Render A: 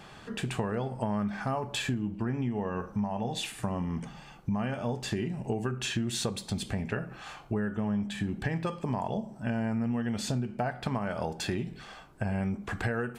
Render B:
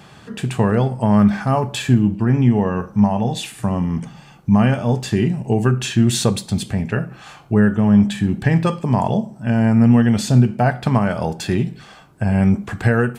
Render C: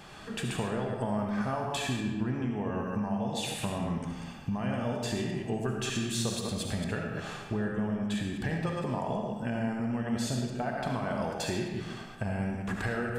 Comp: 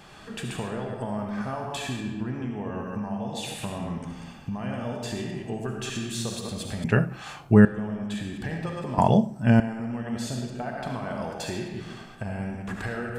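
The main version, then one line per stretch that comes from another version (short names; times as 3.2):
C
6.84–7.65 from B
8.98–9.6 from B
not used: A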